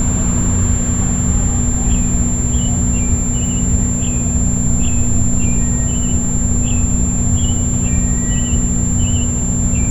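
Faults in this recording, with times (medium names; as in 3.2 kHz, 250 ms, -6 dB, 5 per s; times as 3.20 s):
hum 60 Hz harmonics 4 -19 dBFS
whine 7.3 kHz -20 dBFS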